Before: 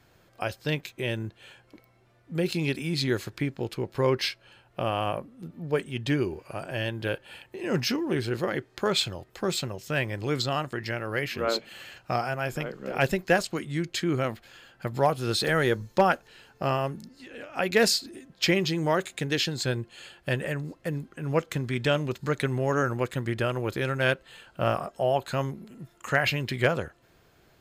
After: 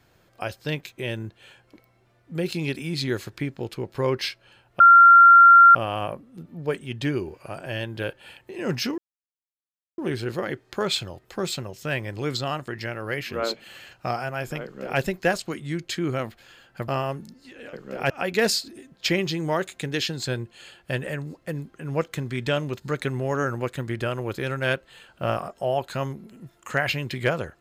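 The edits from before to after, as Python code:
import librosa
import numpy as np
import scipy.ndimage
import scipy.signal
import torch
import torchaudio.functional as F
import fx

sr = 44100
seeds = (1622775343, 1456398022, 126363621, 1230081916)

y = fx.edit(x, sr, fx.insert_tone(at_s=4.8, length_s=0.95, hz=1380.0, db=-7.5),
    fx.insert_silence(at_s=8.03, length_s=1.0),
    fx.duplicate(start_s=12.68, length_s=0.37, to_s=17.48),
    fx.cut(start_s=14.93, length_s=1.7), tone=tone)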